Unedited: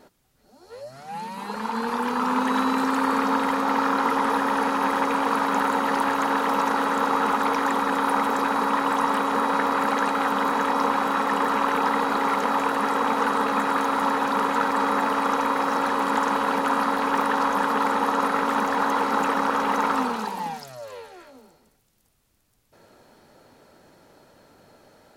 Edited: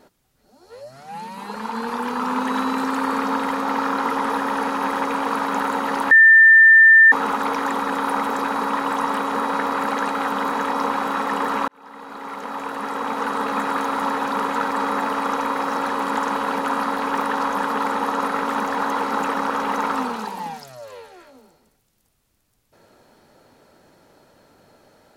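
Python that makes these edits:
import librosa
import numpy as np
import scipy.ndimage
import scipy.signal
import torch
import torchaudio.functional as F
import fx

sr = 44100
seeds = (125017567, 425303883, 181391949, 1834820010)

y = fx.edit(x, sr, fx.bleep(start_s=6.11, length_s=1.01, hz=1790.0, db=-6.5),
    fx.fade_in_span(start_s=11.68, length_s=1.91), tone=tone)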